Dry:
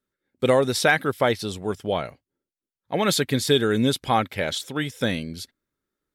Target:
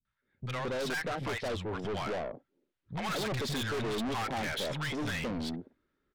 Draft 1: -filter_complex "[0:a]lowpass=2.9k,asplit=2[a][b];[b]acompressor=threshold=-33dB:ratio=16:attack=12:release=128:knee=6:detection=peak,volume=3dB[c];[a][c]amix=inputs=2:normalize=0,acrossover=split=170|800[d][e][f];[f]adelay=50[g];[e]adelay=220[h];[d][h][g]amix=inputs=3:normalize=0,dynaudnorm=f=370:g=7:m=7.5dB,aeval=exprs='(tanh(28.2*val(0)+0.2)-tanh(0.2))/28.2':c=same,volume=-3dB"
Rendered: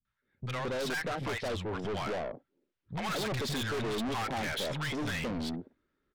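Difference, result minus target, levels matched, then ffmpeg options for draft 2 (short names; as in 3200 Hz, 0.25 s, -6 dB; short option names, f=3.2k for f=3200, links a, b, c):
compressor: peak gain reduction -6 dB
-filter_complex "[0:a]lowpass=2.9k,asplit=2[a][b];[b]acompressor=threshold=-39.5dB:ratio=16:attack=12:release=128:knee=6:detection=peak,volume=3dB[c];[a][c]amix=inputs=2:normalize=0,acrossover=split=170|800[d][e][f];[f]adelay=50[g];[e]adelay=220[h];[d][h][g]amix=inputs=3:normalize=0,dynaudnorm=f=370:g=7:m=7.5dB,aeval=exprs='(tanh(28.2*val(0)+0.2)-tanh(0.2))/28.2':c=same,volume=-3dB"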